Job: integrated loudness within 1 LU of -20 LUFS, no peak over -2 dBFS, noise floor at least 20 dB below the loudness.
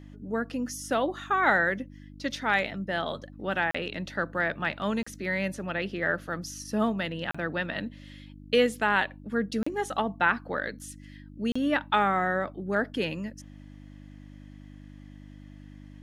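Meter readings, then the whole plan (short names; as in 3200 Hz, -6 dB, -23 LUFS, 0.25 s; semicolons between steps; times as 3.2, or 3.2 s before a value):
dropouts 5; longest dropout 35 ms; hum 50 Hz; harmonics up to 300 Hz; hum level -45 dBFS; loudness -28.5 LUFS; peak -8.5 dBFS; loudness target -20.0 LUFS
-> interpolate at 3.71/5.03/7.31/9.63/11.52, 35 ms; de-hum 50 Hz, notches 6; gain +8.5 dB; limiter -2 dBFS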